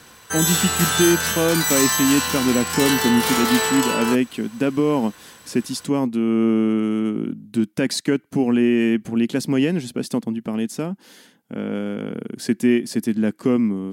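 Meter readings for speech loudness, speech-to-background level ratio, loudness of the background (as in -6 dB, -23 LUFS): -21.5 LUFS, -1.5 dB, -20.0 LUFS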